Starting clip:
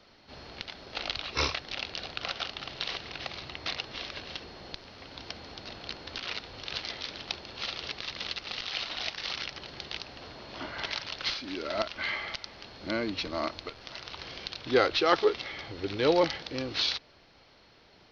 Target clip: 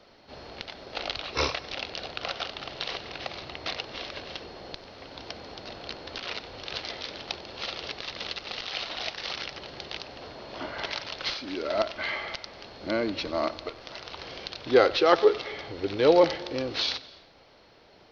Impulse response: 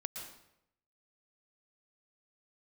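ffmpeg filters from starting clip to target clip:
-filter_complex "[0:a]equalizer=frequency=550:width=0.85:gain=6,asplit=2[link_01][link_02];[1:a]atrim=start_sample=2205,adelay=94[link_03];[link_02][link_03]afir=irnorm=-1:irlink=0,volume=-16.5dB[link_04];[link_01][link_04]amix=inputs=2:normalize=0"

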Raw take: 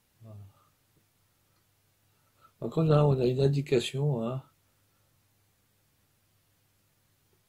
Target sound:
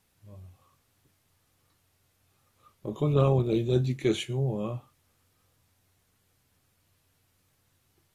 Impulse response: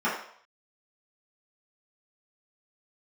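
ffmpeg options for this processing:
-af "asetrate=40517,aresample=44100"

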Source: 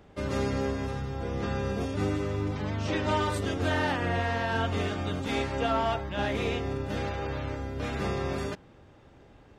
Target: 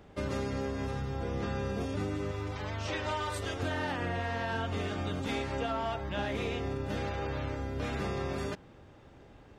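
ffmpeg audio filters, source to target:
ffmpeg -i in.wav -filter_complex "[0:a]asettb=1/sr,asplit=3[link_01][link_02][link_03];[link_01]atrim=end=2.314[link_04];[link_02]atrim=start=2.31:end=3.63,asetpts=PTS-STARTPTS,afade=type=in:duration=0.004:curve=qsin,afade=type=out:start_time=1.316:duration=0.004:curve=qsin,equalizer=frequency=200:width_type=o:width=1.7:gain=-12[link_05];[link_03]atrim=start=3.626[link_06];[link_04][link_05]acrossfade=duration=0.004:curve1=hsin:curve2=qsin[link_07];[link_07][link_06]acrossfade=duration=0.004:curve1=qsin:curve2=hsin,acompressor=threshold=-30dB:ratio=6" out.wav

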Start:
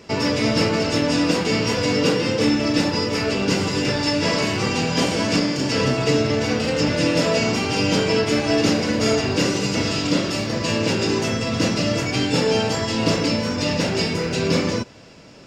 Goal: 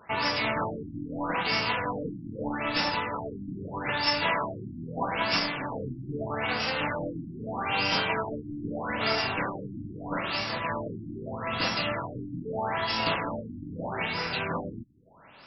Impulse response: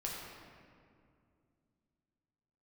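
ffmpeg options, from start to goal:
-af "lowshelf=frequency=610:width_type=q:width=1.5:gain=-11,tremolo=f=290:d=0.462,afftfilt=real='re*lt(b*sr/1024,340*pow(5800/340,0.5+0.5*sin(2*PI*0.79*pts/sr)))':imag='im*lt(b*sr/1024,340*pow(5800/340,0.5+0.5*sin(2*PI*0.79*pts/sr)))':win_size=1024:overlap=0.75"

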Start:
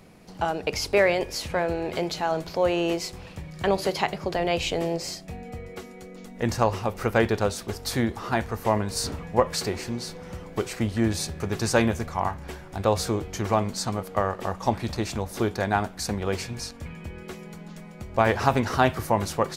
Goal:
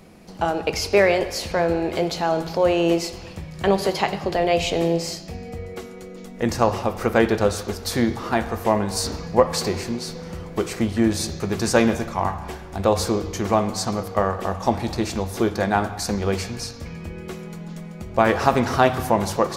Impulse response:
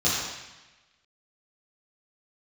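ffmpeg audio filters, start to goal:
-filter_complex "[0:a]asplit=2[link_01][link_02];[1:a]atrim=start_sample=2205,lowpass=5400[link_03];[link_02][link_03]afir=irnorm=-1:irlink=0,volume=-23dB[link_04];[link_01][link_04]amix=inputs=2:normalize=0,volume=3dB"

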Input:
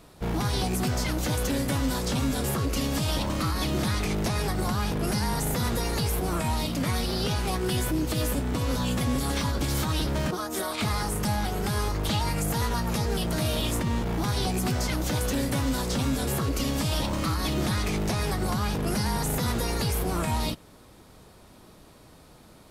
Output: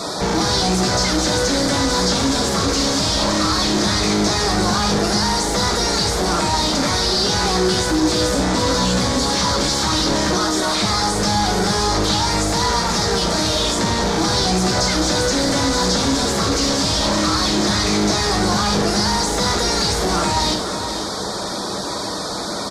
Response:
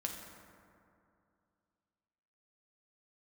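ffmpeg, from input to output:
-filter_complex "[0:a]asplit=2[link_01][link_02];[link_02]highpass=frequency=720:poles=1,volume=31dB,asoftclip=type=tanh:threshold=-18dB[link_03];[link_01][link_03]amix=inputs=2:normalize=0,lowpass=frequency=2100:poles=1,volume=-6dB,highshelf=frequency=9000:gain=-11.5[link_04];[1:a]atrim=start_sample=2205,atrim=end_sample=4410[link_05];[link_04][link_05]afir=irnorm=-1:irlink=0,aexciter=amount=13.4:drive=4.2:freq=4200,afftfilt=real='re*gte(hypot(re,im),0.0126)':imag='im*gte(hypot(re,im),0.0126)':win_size=1024:overlap=0.75,aemphasis=mode=reproduction:type=50fm,aecho=1:1:485:0.237,asplit=2[link_06][link_07];[link_07]alimiter=limit=-23dB:level=0:latency=1,volume=1dB[link_08];[link_06][link_08]amix=inputs=2:normalize=0,acrossover=split=8300[link_09][link_10];[link_10]acompressor=threshold=-45dB:ratio=4:attack=1:release=60[link_11];[link_09][link_11]amix=inputs=2:normalize=0,volume=2.5dB"

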